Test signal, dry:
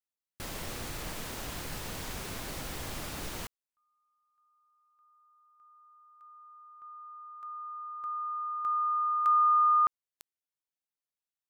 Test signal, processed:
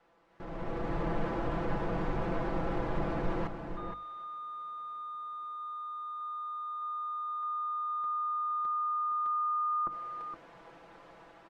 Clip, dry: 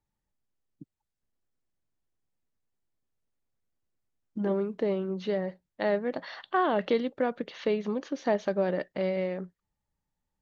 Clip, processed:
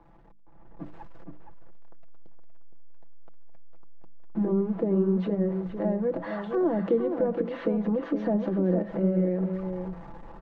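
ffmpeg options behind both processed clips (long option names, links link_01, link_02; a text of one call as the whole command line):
ffmpeg -i in.wav -filter_complex "[0:a]aeval=exprs='val(0)+0.5*0.00794*sgn(val(0))':channel_layout=same,lowpass=1000,bandreject=frequency=50:width_type=h:width=6,bandreject=frequency=100:width_type=h:width=6,bandreject=frequency=150:width_type=h:width=6,bandreject=frequency=200:width_type=h:width=6,bandreject=frequency=250:width_type=h:width=6,bandreject=frequency=300:width_type=h:width=6,acrossover=split=350[link_01][link_02];[link_02]acompressor=threshold=-43dB:ratio=6:attack=0.4:release=120:knee=6:detection=peak[link_03];[link_01][link_03]amix=inputs=2:normalize=0,lowshelf=frequency=170:gain=-5.5,asplit=2[link_04][link_05];[link_05]adelay=466.5,volume=-7dB,highshelf=frequency=4000:gain=-10.5[link_06];[link_04][link_06]amix=inputs=2:normalize=0,dynaudnorm=framelen=260:gausssize=5:maxgain=13dB,equalizer=frequency=110:width_type=o:width=2.1:gain=-3,aecho=1:1:6:0.67,volume=-3dB" out.wav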